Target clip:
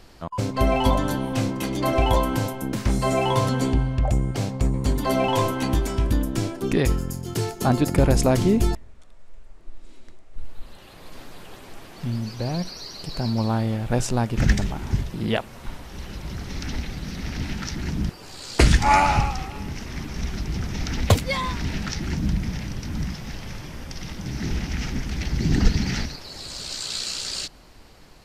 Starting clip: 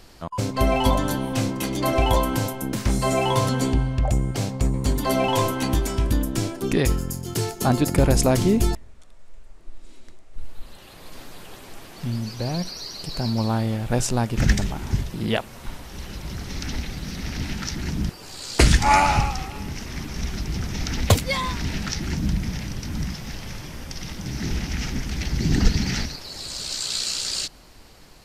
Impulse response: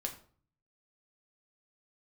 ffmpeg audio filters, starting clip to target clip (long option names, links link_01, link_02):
-af "highshelf=frequency=4500:gain=-5.5"